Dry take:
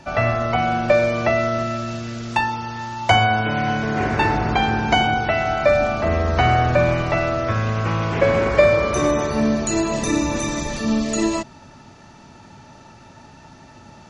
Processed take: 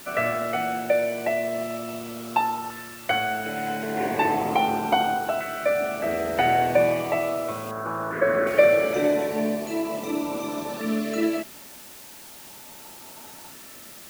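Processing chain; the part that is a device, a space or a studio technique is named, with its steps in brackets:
shortwave radio (band-pass filter 290–2,600 Hz; amplitude tremolo 0.45 Hz, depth 41%; auto-filter notch saw up 0.37 Hz 800–2,100 Hz; white noise bed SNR 19 dB)
0:07.71–0:08.47: high shelf with overshoot 2,100 Hz −7.5 dB, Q 3

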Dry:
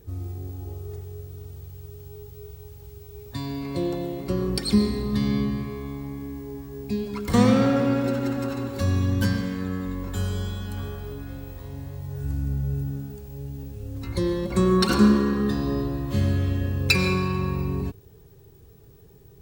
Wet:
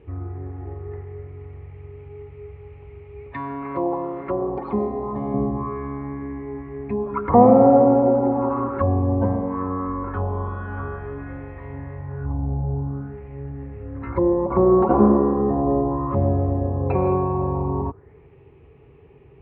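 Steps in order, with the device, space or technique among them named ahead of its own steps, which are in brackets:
envelope filter bass rig (envelope-controlled low-pass 740–2,800 Hz down, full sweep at −21.5 dBFS; loudspeaker in its box 66–2,300 Hz, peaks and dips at 110 Hz −7 dB, 190 Hz −10 dB, 980 Hz +3 dB, 1,600 Hz −9 dB)
0:03.33–0:05.34: spectral tilt +2.5 dB per octave
level +5 dB

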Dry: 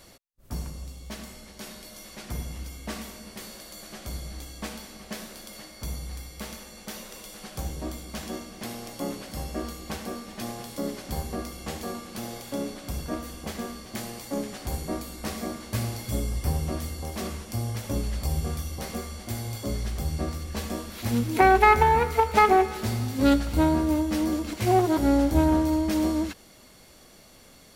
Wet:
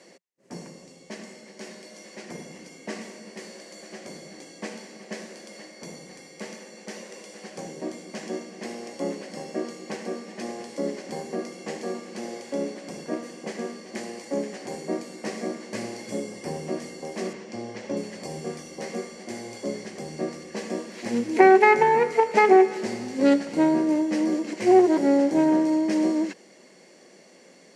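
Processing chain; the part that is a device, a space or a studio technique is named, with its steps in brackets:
0:17.33–0:17.97: low-pass filter 5,400 Hz 12 dB per octave
television speaker (loudspeaker in its box 180–8,000 Hz, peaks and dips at 180 Hz +5 dB, 370 Hz +7 dB, 520 Hz +6 dB, 1,300 Hz −8 dB, 1,900 Hz +6 dB, 3,600 Hz −9 dB)
low-shelf EQ 120 Hz −5.5 dB

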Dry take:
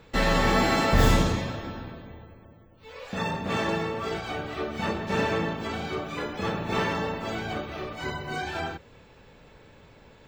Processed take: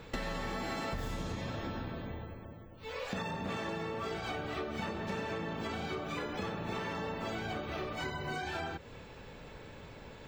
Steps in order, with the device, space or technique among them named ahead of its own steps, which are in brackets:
serial compression, leveller first (downward compressor 2.5 to 1, threshold −28 dBFS, peak gain reduction 9.5 dB; downward compressor 6 to 1, threshold −38 dBFS, peak gain reduction 14.5 dB)
level +3 dB

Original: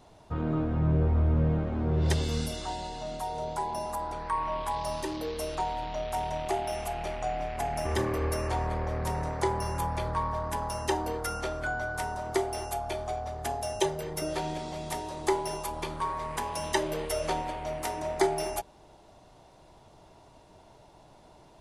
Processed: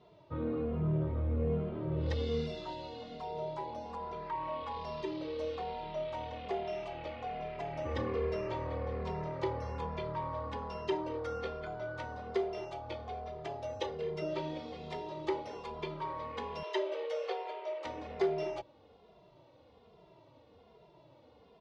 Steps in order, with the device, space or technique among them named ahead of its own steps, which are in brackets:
barber-pole flanger into a guitar amplifier (barber-pole flanger 2.5 ms −1.2 Hz; soft clipping −21 dBFS, distortion −20 dB; loudspeaker in its box 80–4,200 Hz, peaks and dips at 480 Hz +8 dB, 790 Hz −6 dB, 1,600 Hz −6 dB)
0:16.63–0:17.85: Butterworth high-pass 350 Hz 96 dB per octave
level −2 dB

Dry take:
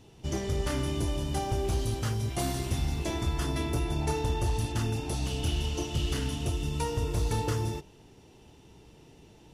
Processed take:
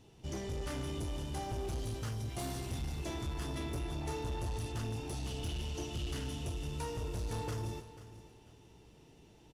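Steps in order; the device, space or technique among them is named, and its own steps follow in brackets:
saturation between pre-emphasis and de-emphasis (high-shelf EQ 12,000 Hz +12 dB; soft clipping −27.5 dBFS, distortion −13 dB; high-shelf EQ 12,000 Hz −12 dB)
repeating echo 491 ms, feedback 27%, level −15 dB
level −5.5 dB

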